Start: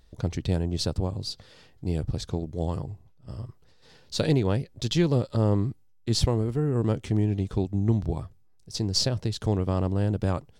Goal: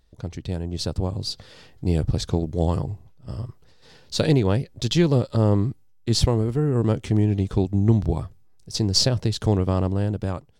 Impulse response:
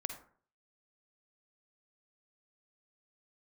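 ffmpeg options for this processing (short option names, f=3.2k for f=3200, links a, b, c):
-af "dynaudnorm=f=290:g=7:m=11.5dB,volume=-4dB"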